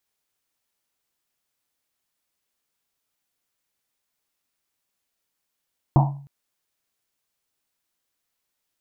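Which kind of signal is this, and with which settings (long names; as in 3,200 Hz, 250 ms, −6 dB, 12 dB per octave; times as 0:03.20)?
drum after Risset length 0.31 s, pitch 140 Hz, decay 0.55 s, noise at 820 Hz, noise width 350 Hz, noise 35%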